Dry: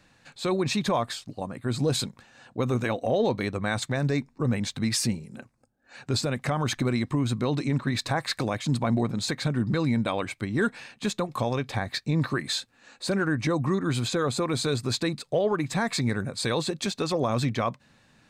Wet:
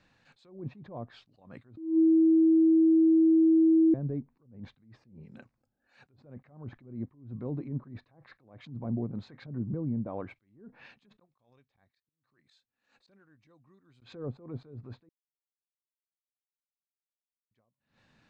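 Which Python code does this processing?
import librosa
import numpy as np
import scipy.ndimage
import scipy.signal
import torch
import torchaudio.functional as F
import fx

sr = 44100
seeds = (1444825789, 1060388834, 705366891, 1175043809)

y = fx.peak_eq(x, sr, hz=4800.0, db=-10.0, octaves=2.7, at=(9.45, 10.36))
y = fx.gate_flip(y, sr, shuts_db=-22.0, range_db=-30, at=(11.19, 14.02))
y = fx.edit(y, sr, fx.bleep(start_s=1.77, length_s=2.17, hz=323.0, db=-10.5),
    fx.silence(start_s=15.09, length_s=2.42), tone=tone)
y = fx.env_lowpass_down(y, sr, base_hz=460.0, full_db=-21.5)
y = scipy.signal.sosfilt(scipy.signal.butter(2, 5100.0, 'lowpass', fs=sr, output='sos'), y)
y = fx.attack_slew(y, sr, db_per_s=120.0)
y = y * 10.0 ** (-6.5 / 20.0)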